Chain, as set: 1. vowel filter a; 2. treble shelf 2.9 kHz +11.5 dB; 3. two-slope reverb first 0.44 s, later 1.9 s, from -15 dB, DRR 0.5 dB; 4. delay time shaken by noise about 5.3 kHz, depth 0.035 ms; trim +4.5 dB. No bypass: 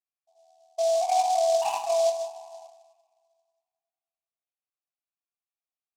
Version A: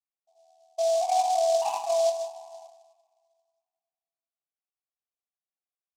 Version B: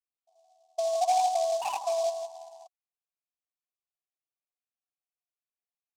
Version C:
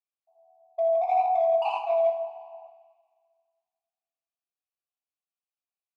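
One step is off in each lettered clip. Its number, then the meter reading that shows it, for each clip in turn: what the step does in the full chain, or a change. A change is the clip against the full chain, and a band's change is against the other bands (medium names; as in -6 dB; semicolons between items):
2, 2 kHz band -3.0 dB; 3, loudness change -3.0 LU; 4, 4 kHz band -10.5 dB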